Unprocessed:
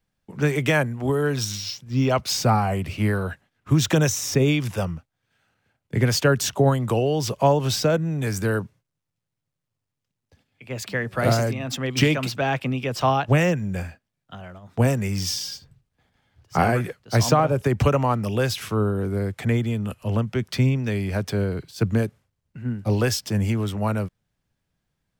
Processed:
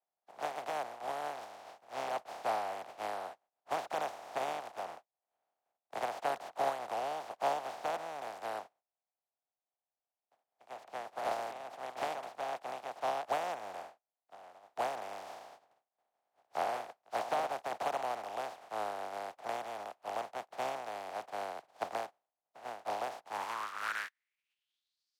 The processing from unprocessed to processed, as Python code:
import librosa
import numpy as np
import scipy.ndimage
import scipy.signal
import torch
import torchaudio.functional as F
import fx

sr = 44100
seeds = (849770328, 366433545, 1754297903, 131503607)

y = fx.spec_flatten(x, sr, power=0.13)
y = fx.filter_sweep_bandpass(y, sr, from_hz=720.0, to_hz=4800.0, start_s=23.2, end_s=25.09, q=4.5)